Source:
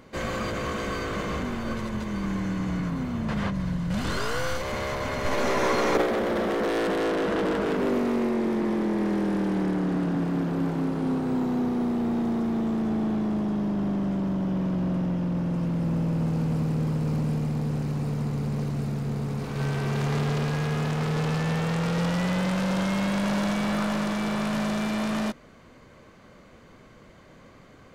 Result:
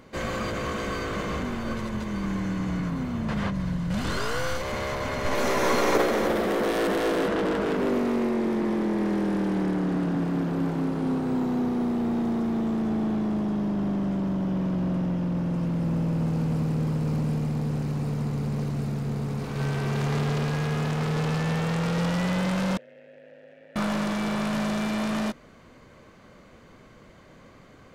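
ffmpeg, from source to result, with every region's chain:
-filter_complex "[0:a]asettb=1/sr,asplit=3[s0][s1][s2];[s0]atrim=end=5.354[s3];[s1]atrim=start=5.35:end=7.28,asetpts=PTS-STARTPTS,afade=t=in:d=0.004:c=qsin,afade=t=out:st=1.926:d=0.004:c=qsin,highshelf=f=9600:g=10.5,aecho=1:1:302:0.447,atrim=end_sample=85113[s4];[s2]atrim=start=7.276[s5];[s3][s4]acrossfade=d=0.004:c1=hsin:c2=qsin[s6];[s6][s5]acrossfade=d=0.004:c1=qsin:c2=hsin,asettb=1/sr,asplit=3[s7][s8][s9];[s7]atrim=end=22.774[s10];[s8]atrim=start=22.77:end=23.76,asetpts=PTS-STARTPTS,afade=t=in:d=0.004:c=qsin,afade=t=out:st=0.986:d=0.004:c=qsin,aeval=exprs='val(0)*sin(2*PI*54*n/s)':c=same,acrossover=split=2600|6700[s11][s12][s13];[s11]acompressor=threshold=0.0178:ratio=4[s14];[s12]acompressor=threshold=0.00112:ratio=4[s15];[s13]acompressor=threshold=0.001:ratio=4[s16];[s14][s15][s16]amix=inputs=3:normalize=0,asplit=3[s17][s18][s19];[s17]bandpass=f=530:t=q:w=8,volume=1[s20];[s18]bandpass=f=1840:t=q:w=8,volume=0.501[s21];[s19]bandpass=f=2480:t=q:w=8,volume=0.355[s22];[s20][s21][s22]amix=inputs=3:normalize=0[s23];[s9]atrim=start=23.756[s24];[s10][s23]acrossfade=d=0.004:c1=hsin:c2=qsin[s25];[s25][s24]acrossfade=d=0.004:c1=qsin:c2=hsin"

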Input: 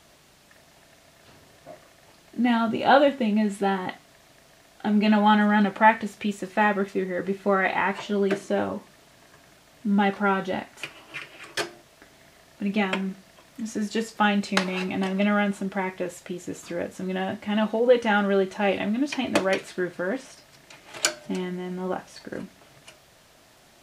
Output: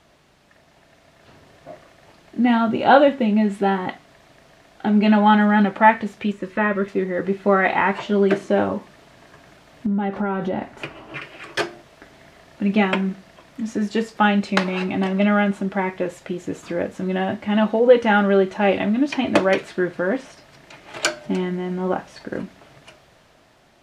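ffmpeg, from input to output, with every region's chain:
-filter_complex "[0:a]asettb=1/sr,asplit=3[s0][s1][s2];[s0]atrim=end=6.324[s3];[s1]atrim=start=6.32:end=6.88,asetpts=PTS-STARTPTS,afade=t=in:d=0.004:c=qsin,afade=t=out:st=0.556:d=0.004:c=qsin,asuperstop=centerf=760:order=8:qfactor=3.6,acrossover=split=2800[s4][s5];[s5]acompressor=threshold=0.00282:ratio=4:attack=1:release=60[s6];[s4][s6]amix=inputs=2:normalize=0,asubboost=boost=9.5:cutoff=120[s7];[s2]atrim=start=6.876[s8];[s3][s7]acrossfade=d=0.004:c1=hsin:c2=qsin[s9];[s9][s8]acrossfade=d=0.004:c1=qsin:c2=hsin,asettb=1/sr,asplit=3[s10][s11][s12];[s10]atrim=end=9.864[s13];[s11]atrim=start=9.86:end=11.22,asetpts=PTS-STARTPTS,afade=t=in:d=0.004:c=qsin,afade=t=out:st=1.356:d=0.004:c=qsin,tiltshelf=f=1300:g=5,acompressor=threshold=0.0501:ratio=8:attack=3.2:release=140:knee=1:detection=peak[s14];[s12]atrim=start=11.216[s15];[s13][s14]acrossfade=d=0.004:c1=hsin:c2=qsin[s16];[s16][s15]acrossfade=d=0.004:c1=qsin:c2=hsin,lowpass=f=2700:p=1,dynaudnorm=f=290:g=9:m=2,volume=1.12"

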